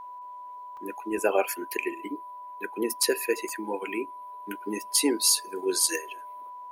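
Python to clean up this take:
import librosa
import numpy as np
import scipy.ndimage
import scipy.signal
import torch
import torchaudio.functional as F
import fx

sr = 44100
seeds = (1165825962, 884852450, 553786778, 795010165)

y = fx.fix_declip(x, sr, threshold_db=-10.5)
y = fx.notch(y, sr, hz=990.0, q=30.0)
y = fx.fix_interpolate(y, sr, at_s=(0.77, 3.03, 3.49), length_ms=2.6)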